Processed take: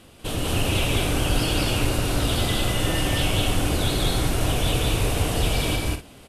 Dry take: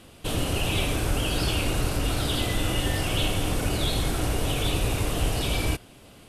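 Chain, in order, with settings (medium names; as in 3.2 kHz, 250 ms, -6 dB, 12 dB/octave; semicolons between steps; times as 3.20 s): loudspeakers at several distances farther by 66 m 0 dB, 84 m -9 dB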